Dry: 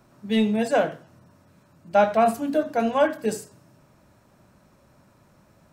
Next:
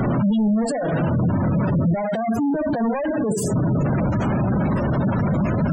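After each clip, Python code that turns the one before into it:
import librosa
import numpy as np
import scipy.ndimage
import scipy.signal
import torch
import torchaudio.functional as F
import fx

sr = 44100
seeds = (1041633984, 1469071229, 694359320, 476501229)

y = np.sign(x) * np.sqrt(np.mean(np.square(x)))
y = fx.spec_gate(y, sr, threshold_db=-15, keep='strong')
y = fx.peak_eq(y, sr, hz=170.0, db=8.0, octaves=2.0)
y = F.gain(torch.from_numpy(y), 2.0).numpy()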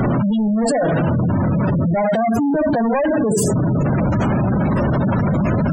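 y = fx.env_flatten(x, sr, amount_pct=100)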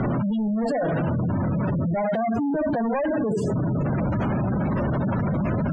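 y = scipy.signal.sosfilt(scipy.signal.butter(2, 3300.0, 'lowpass', fs=sr, output='sos'), x)
y = F.gain(torch.from_numpy(y), -6.5).numpy()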